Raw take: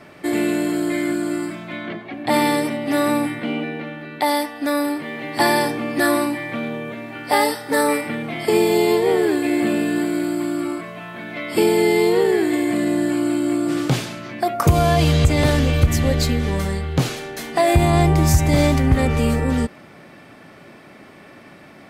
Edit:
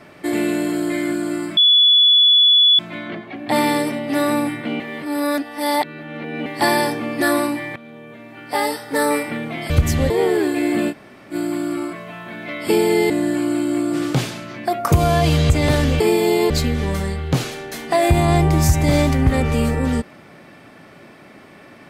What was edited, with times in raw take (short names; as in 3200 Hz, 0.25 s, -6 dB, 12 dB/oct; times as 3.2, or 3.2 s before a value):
1.57 add tone 3420 Hz -9 dBFS 1.22 s
3.58–5.24 reverse
6.54–7.89 fade in, from -17.5 dB
8.48–8.98 swap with 15.75–16.15
9.79–10.21 room tone, crossfade 0.06 s
11.98–12.85 cut